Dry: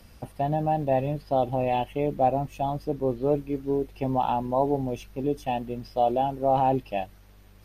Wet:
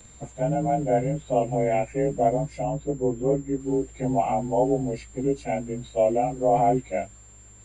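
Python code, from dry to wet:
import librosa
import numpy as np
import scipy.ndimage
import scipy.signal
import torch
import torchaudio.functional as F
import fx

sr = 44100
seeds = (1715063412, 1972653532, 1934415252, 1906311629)

y = fx.partial_stretch(x, sr, pct=91)
y = fx.air_absorb(y, sr, metres=270.0, at=(2.63, 3.6))
y = y + 10.0 ** (-53.0 / 20.0) * np.sin(2.0 * np.pi * 7300.0 * np.arange(len(y)) / sr)
y = y * 10.0 ** (3.0 / 20.0)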